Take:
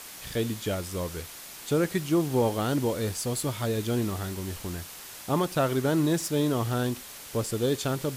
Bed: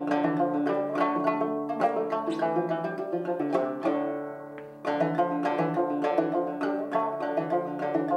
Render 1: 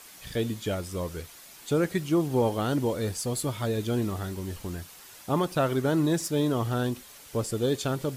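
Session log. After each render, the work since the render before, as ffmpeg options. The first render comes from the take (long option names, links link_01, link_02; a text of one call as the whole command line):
ffmpeg -i in.wav -af "afftdn=noise_reduction=7:noise_floor=-44" out.wav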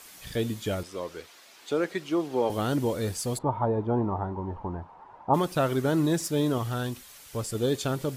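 ffmpeg -i in.wav -filter_complex "[0:a]asettb=1/sr,asplit=3[link_01][link_02][link_03];[link_01]atrim=end=0.834[link_04];[link_02]atrim=start=0.83:end=2.5,asetpts=PTS-STARTPTS,afade=type=in:duration=0.004:curve=qsin,afade=type=out:start_time=1.666:duration=0.004:curve=qsin,acrossover=split=260 6000:gain=0.126 1 0.251[link_05][link_06][link_07];[link_05][link_06][link_07]amix=inputs=3:normalize=0[link_08];[link_03]atrim=start=2.496[link_09];[link_04][link_08]acrossfade=duration=0.004:curve1=hsin:curve2=qsin[link_10];[link_10][link_09]acrossfade=duration=0.004:curve1=qsin:curve2=hsin,asplit=3[link_11][link_12][link_13];[link_11]afade=type=out:start_time=3.37:duration=0.02[link_14];[link_12]lowpass=frequency=910:width_type=q:width=6.6,afade=type=in:start_time=3.37:duration=0.02,afade=type=out:start_time=5.33:duration=0.02[link_15];[link_13]afade=type=in:start_time=5.33:duration=0.02[link_16];[link_14][link_15][link_16]amix=inputs=3:normalize=0,asettb=1/sr,asplit=3[link_17][link_18][link_19];[link_17]atrim=end=6.584[link_20];[link_18]atrim=start=6.58:end=7.55,asetpts=PTS-STARTPTS,afade=type=in:duration=0.004:curve=qsin,afade=type=out:start_time=0.966:duration=0.004:curve=qsin,equalizer=frequency=340:width=0.59:gain=-5.5[link_21];[link_19]atrim=start=7.546[link_22];[link_20][link_21]acrossfade=duration=0.004:curve1=hsin:curve2=qsin[link_23];[link_23][link_22]acrossfade=duration=0.004:curve1=qsin:curve2=hsin" out.wav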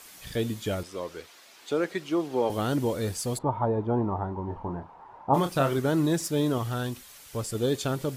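ffmpeg -i in.wav -filter_complex "[0:a]asettb=1/sr,asplit=3[link_01][link_02][link_03];[link_01]atrim=end=4.454[link_04];[link_02]atrim=start=4.45:end=5.79,asetpts=PTS-STARTPTS,afade=type=in:duration=0.004:curve=qsin,afade=type=out:start_time=1.336:duration=0.004:curve=qsin,asplit=2[link_05][link_06];[link_06]adelay=29,volume=-7dB[link_07];[link_05][link_07]amix=inputs=2:normalize=0,atrim=end_sample=59094[link_08];[link_03]atrim=start=5.786[link_09];[link_04][link_08]acrossfade=duration=0.004:curve1=hsin:curve2=qsin[link_10];[link_10][link_09]acrossfade=duration=0.004:curve1=qsin:curve2=hsin" out.wav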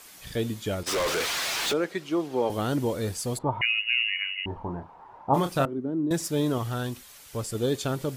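ffmpeg -i in.wav -filter_complex "[0:a]asplit=3[link_01][link_02][link_03];[link_01]afade=type=out:start_time=0.86:duration=0.02[link_04];[link_02]asplit=2[link_05][link_06];[link_06]highpass=frequency=720:poles=1,volume=38dB,asoftclip=type=tanh:threshold=-19.5dB[link_07];[link_05][link_07]amix=inputs=2:normalize=0,lowpass=frequency=7400:poles=1,volume=-6dB,afade=type=in:start_time=0.86:duration=0.02,afade=type=out:start_time=1.72:duration=0.02[link_08];[link_03]afade=type=in:start_time=1.72:duration=0.02[link_09];[link_04][link_08][link_09]amix=inputs=3:normalize=0,asettb=1/sr,asplit=3[link_10][link_11][link_12];[link_10]atrim=end=3.614[link_13];[link_11]atrim=start=3.61:end=4.46,asetpts=PTS-STARTPTS,afade=type=in:duration=0.004:curve=qsin,afade=type=out:start_time=0.846:duration=0.004:curve=qsin,lowpass=frequency=2600:width_type=q:width=0.5098,lowpass=frequency=2600:width_type=q:width=0.6013,lowpass=frequency=2600:width_type=q:width=0.9,lowpass=frequency=2600:width_type=q:width=2.563,afreqshift=-3000[link_14];[link_12]atrim=start=4.456[link_15];[link_13][link_14]acrossfade=duration=0.004:curve1=hsin:curve2=qsin[link_16];[link_16][link_15]acrossfade=duration=0.004:curve1=qsin:curve2=hsin,asettb=1/sr,asplit=3[link_17][link_18][link_19];[link_17]atrim=end=5.654[link_20];[link_18]atrim=start=5.65:end=6.11,asetpts=PTS-STARTPTS,afade=type=in:duration=0.004:curve=qsin,afade=type=out:start_time=0.456:duration=0.004:curve=qsin,bandpass=frequency=270:width_type=q:width=2.3[link_21];[link_19]atrim=start=6.106[link_22];[link_20][link_21]acrossfade=duration=0.004:curve1=hsin:curve2=qsin[link_23];[link_23][link_22]acrossfade=duration=0.004:curve1=qsin:curve2=hsin" out.wav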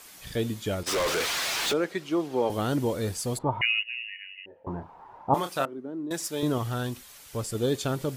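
ffmpeg -i in.wav -filter_complex "[0:a]asettb=1/sr,asplit=3[link_01][link_02][link_03];[link_01]atrim=end=3.834[link_04];[link_02]atrim=start=3.83:end=4.67,asetpts=PTS-STARTPTS,afade=type=in:duration=0.004:curve=qsin,afade=type=out:start_time=0.836:duration=0.004:curve=qsin,asplit=3[link_05][link_06][link_07];[link_05]bandpass=frequency=530:width_type=q:width=8,volume=0dB[link_08];[link_06]bandpass=frequency=1840:width_type=q:width=8,volume=-6dB[link_09];[link_07]bandpass=frequency=2480:width_type=q:width=8,volume=-9dB[link_10];[link_08][link_09][link_10]amix=inputs=3:normalize=0[link_11];[link_03]atrim=start=4.666[link_12];[link_04][link_11]acrossfade=duration=0.004:curve1=hsin:curve2=qsin[link_13];[link_13][link_12]acrossfade=duration=0.004:curve1=qsin:curve2=hsin,asettb=1/sr,asplit=3[link_14][link_15][link_16];[link_14]atrim=end=5.344[link_17];[link_15]atrim=start=5.34:end=6.43,asetpts=PTS-STARTPTS,afade=type=in:duration=0.004:curve=qsin,afade=type=out:start_time=1.086:duration=0.004:curve=qsin,highpass=frequency=600:poles=1[link_18];[link_16]atrim=start=6.426[link_19];[link_17][link_18]acrossfade=duration=0.004:curve1=hsin:curve2=qsin[link_20];[link_20][link_19]acrossfade=duration=0.004:curve1=qsin:curve2=hsin" out.wav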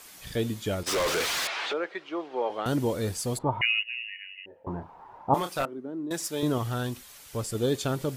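ffmpeg -i in.wav -filter_complex "[0:a]asettb=1/sr,asplit=3[link_01][link_02][link_03];[link_01]atrim=end=1.474[link_04];[link_02]atrim=start=1.47:end=2.66,asetpts=PTS-STARTPTS,afade=type=in:duration=0.004:curve=qsin,afade=type=out:start_time=1.186:duration=0.004:curve=qsin,highpass=500,lowpass=2900[link_05];[link_03]atrim=start=2.656[link_06];[link_04][link_05]acrossfade=duration=0.004:curve1=hsin:curve2=qsin[link_07];[link_07][link_06]acrossfade=duration=0.004:curve1=qsin:curve2=hsin,asettb=1/sr,asplit=3[link_08][link_09][link_10];[link_08]atrim=end=5.394[link_11];[link_09]atrim=start=5.39:end=6.33,asetpts=PTS-STARTPTS,afade=type=in:duration=0.004:curve=qsin,afade=type=out:start_time=0.936:duration=0.004:curve=qsin,aeval=exprs='clip(val(0),-1,0.0794)':channel_layout=same[link_12];[link_10]atrim=start=6.326[link_13];[link_11][link_12]acrossfade=duration=0.004:curve1=hsin:curve2=qsin[link_14];[link_14][link_13]acrossfade=duration=0.004:curve1=qsin:curve2=hsin" out.wav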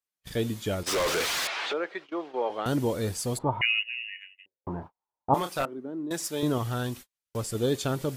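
ffmpeg -i in.wav -af "agate=range=-45dB:threshold=-41dB:ratio=16:detection=peak" out.wav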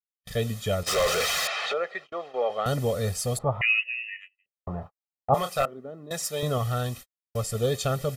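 ffmpeg -i in.wav -af "agate=range=-21dB:threshold=-44dB:ratio=16:detection=peak,aecho=1:1:1.6:0.86" out.wav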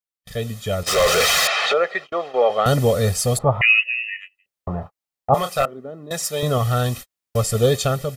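ffmpeg -i in.wav -af "dynaudnorm=framelen=640:gausssize=3:maxgain=10dB" out.wav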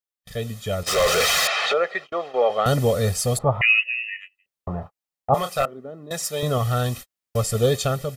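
ffmpeg -i in.wav -af "volume=-2.5dB" out.wav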